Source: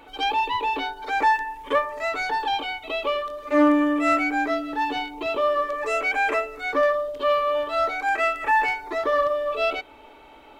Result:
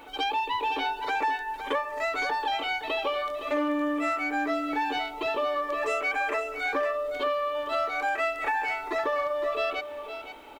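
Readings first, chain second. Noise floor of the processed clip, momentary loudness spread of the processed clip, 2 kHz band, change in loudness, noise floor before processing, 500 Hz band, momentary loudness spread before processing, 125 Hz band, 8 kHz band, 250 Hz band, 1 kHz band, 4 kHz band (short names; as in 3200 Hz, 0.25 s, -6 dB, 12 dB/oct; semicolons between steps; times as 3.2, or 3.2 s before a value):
-40 dBFS, 3 LU, -4.0 dB, -5.0 dB, -48 dBFS, -5.0 dB, 7 LU, n/a, -3.0 dB, -7.5 dB, -5.0 dB, -2.5 dB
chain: low shelf 190 Hz -6 dB; compressor, threshold -27 dBFS, peak gain reduction 12 dB; bit-crush 11-bit; echo 0.514 s -10 dB; gain +1.5 dB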